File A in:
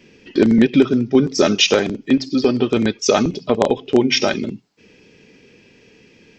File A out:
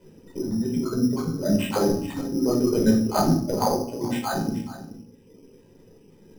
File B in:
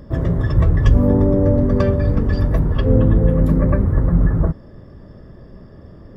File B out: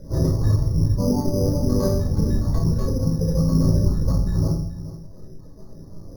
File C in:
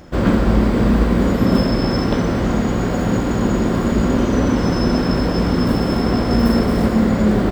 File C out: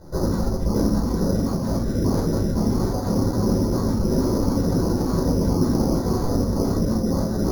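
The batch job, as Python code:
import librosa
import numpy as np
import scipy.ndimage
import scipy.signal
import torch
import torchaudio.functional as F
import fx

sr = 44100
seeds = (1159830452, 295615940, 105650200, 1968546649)

y = fx.spec_dropout(x, sr, seeds[0], share_pct=21)
y = fx.dereverb_blind(y, sr, rt60_s=1.5)
y = scipy.signal.sosfilt(scipy.signal.butter(2, 1000.0, 'lowpass', fs=sr, output='sos'), y)
y = fx.hum_notches(y, sr, base_hz=60, count=4)
y = fx.over_compress(y, sr, threshold_db=-19.0, ratio=-0.5)
y = fx.comb_fb(y, sr, f0_hz=280.0, decay_s=1.1, harmonics='all', damping=0.0, mix_pct=60)
y = y + 10.0 ** (-15.0 / 20.0) * np.pad(y, (int(427 * sr / 1000.0), 0))[:len(y)]
y = fx.room_shoebox(y, sr, seeds[1], volume_m3=620.0, walls='furnished', distance_m=4.8)
y = np.repeat(y[::8], 8)[:len(y)]
y = F.gain(torch.from_numpy(y), -1.0).numpy()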